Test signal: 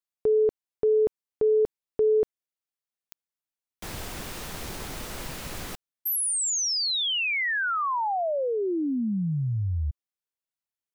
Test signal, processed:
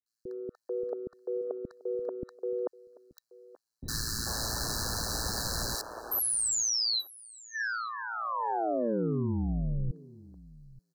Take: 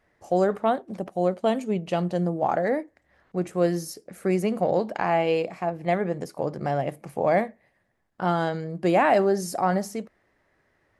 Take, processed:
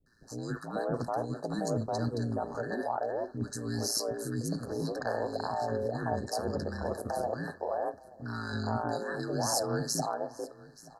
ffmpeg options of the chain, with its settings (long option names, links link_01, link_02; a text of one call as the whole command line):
ffmpeg -i in.wav -filter_complex "[0:a]aeval=exprs='val(0)*sin(2*PI*57*n/s)':channel_layout=same,equalizer=frequency=3500:width=0.45:gain=10,areverse,acompressor=threshold=-32dB:ratio=12:attack=15:release=64:knee=1:detection=rms,areverse,acrossover=split=350|1300[link_01][link_02][link_03];[link_03]adelay=60[link_04];[link_02]adelay=440[link_05];[link_01][link_05][link_04]amix=inputs=3:normalize=0,afftfilt=real='re*(1-between(b*sr/4096,1800,3900))':imag='im*(1-between(b*sr/4096,1800,3900))':win_size=4096:overlap=0.75,asplit=2[link_06][link_07];[link_07]aecho=0:1:879:0.0891[link_08];[link_06][link_08]amix=inputs=2:normalize=0,volume=4.5dB" out.wav